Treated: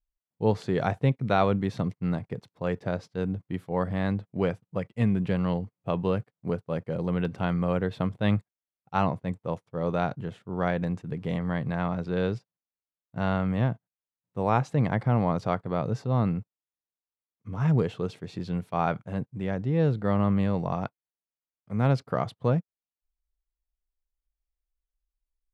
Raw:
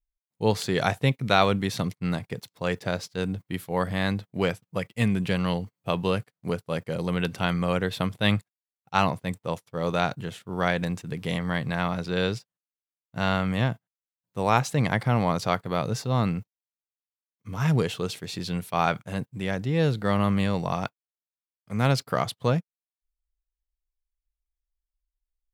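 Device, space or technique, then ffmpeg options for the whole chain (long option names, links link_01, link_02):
through cloth: -af "lowpass=9500,highshelf=frequency=2100:gain=-17"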